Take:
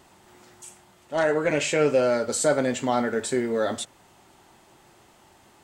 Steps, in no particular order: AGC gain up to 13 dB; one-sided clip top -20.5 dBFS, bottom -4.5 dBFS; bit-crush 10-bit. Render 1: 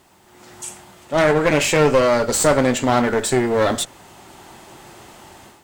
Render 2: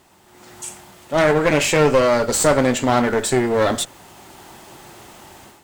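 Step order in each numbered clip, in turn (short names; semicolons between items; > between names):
AGC > bit-crush > one-sided clip; bit-crush > AGC > one-sided clip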